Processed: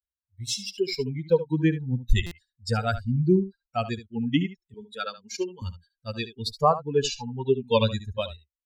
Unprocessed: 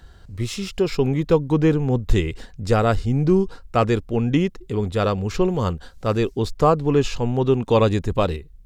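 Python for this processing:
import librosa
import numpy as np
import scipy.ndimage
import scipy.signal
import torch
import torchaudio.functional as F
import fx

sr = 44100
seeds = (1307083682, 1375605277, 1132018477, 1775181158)

y = fx.bin_expand(x, sr, power=3.0)
y = fx.dynamic_eq(y, sr, hz=1600.0, q=0.77, threshold_db=-39.0, ratio=4.0, max_db=-8, at=(3.36, 4.03), fade=0.02)
y = fx.highpass(y, sr, hz=260.0, slope=24, at=(4.74, 5.62))
y = fx.peak_eq(y, sr, hz=4700.0, db=10.5, octaves=1.8)
y = y + 10.0 ** (-13.5 / 20.0) * np.pad(y, (int(72 * sr / 1000.0), 0))[:len(y)]
y = fx.buffer_glitch(y, sr, at_s=(2.26,), block=256, repeats=8)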